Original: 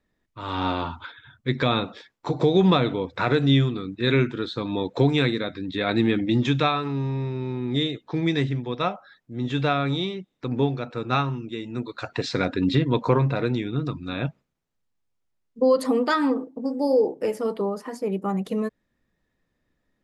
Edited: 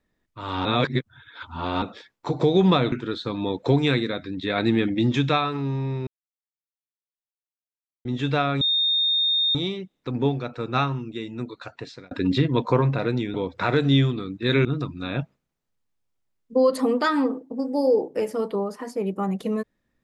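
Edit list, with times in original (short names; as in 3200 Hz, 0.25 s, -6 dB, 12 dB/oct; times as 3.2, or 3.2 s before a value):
0.65–1.82 reverse
2.92–4.23 move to 13.71
7.38–9.36 mute
9.92 add tone 3670 Hz -18.5 dBFS 0.94 s
11.65–12.48 fade out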